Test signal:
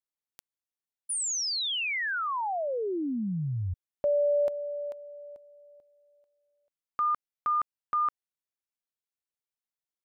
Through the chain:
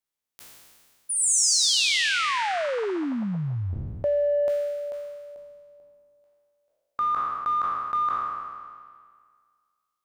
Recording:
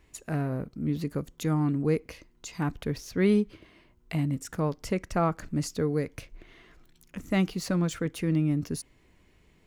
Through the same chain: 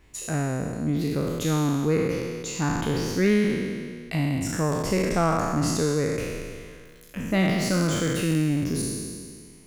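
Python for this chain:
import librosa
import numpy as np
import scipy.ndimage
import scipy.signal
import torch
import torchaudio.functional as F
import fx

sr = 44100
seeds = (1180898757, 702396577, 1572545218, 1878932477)

p1 = fx.spec_trails(x, sr, decay_s=1.89)
p2 = 10.0 ** (-25.5 / 20.0) * np.tanh(p1 / 10.0 ** (-25.5 / 20.0))
y = p1 + (p2 * librosa.db_to_amplitude(-9.0))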